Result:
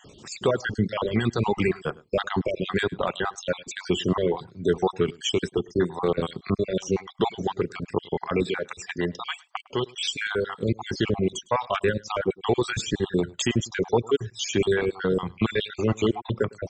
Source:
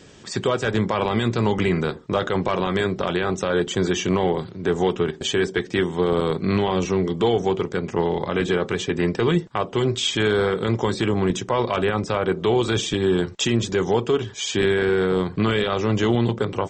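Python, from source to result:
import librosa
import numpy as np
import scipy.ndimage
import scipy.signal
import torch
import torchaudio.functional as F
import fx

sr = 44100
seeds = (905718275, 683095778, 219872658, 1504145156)

y = fx.spec_dropout(x, sr, seeds[0], share_pct=50)
y = fx.dereverb_blind(y, sr, rt60_s=1.5)
y = fx.low_shelf(y, sr, hz=430.0, db=-7.0, at=(8.43, 10.63))
y = y + 10.0 ** (-23.5 / 20.0) * np.pad(y, (int(105 * sr / 1000.0), 0))[:len(y)]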